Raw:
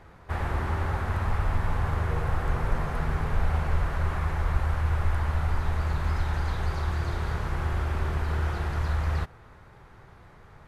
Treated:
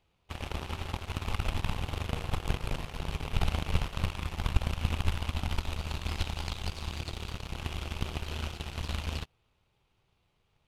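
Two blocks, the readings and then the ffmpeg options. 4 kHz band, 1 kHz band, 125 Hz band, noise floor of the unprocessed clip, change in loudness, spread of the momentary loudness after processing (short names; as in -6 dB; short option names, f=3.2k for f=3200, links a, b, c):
+6.5 dB, -7.5 dB, -7.0 dB, -52 dBFS, -6.0 dB, 6 LU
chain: -af "highshelf=f=2.2k:t=q:w=3:g=8,aeval=exprs='0.282*(cos(1*acos(clip(val(0)/0.282,-1,1)))-cos(1*PI/2))+0.141*(cos(2*acos(clip(val(0)/0.282,-1,1)))-cos(2*PI/2))+0.0355*(cos(7*acos(clip(val(0)/0.282,-1,1)))-cos(7*PI/2))+0.0158*(cos(8*acos(clip(val(0)/0.282,-1,1)))-cos(8*PI/2))':c=same,volume=-4dB"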